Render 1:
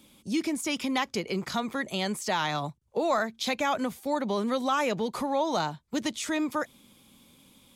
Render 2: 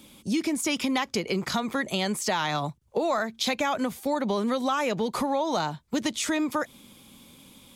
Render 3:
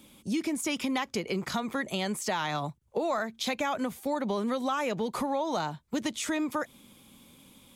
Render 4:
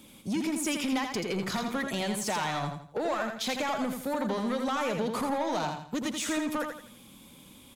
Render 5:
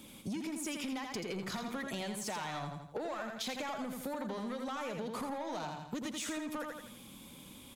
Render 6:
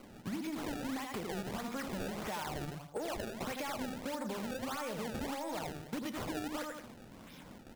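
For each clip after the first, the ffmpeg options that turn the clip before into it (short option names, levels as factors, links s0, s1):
-af "acompressor=threshold=0.0316:ratio=3,volume=2"
-af "equalizer=f=4700:w=1.5:g=-3,volume=0.668"
-filter_complex "[0:a]asoftclip=type=tanh:threshold=0.0422,asplit=2[s0][s1];[s1]aecho=0:1:83|166|249|332:0.531|0.186|0.065|0.0228[s2];[s0][s2]amix=inputs=2:normalize=0,volume=1.26"
-af "acompressor=threshold=0.0141:ratio=6"
-af "flanger=delay=6.2:depth=4.7:regen=-85:speed=0.55:shape=sinusoidal,acrusher=samples=24:mix=1:aa=0.000001:lfo=1:lforange=38.4:lforate=1.6,volume=1.68"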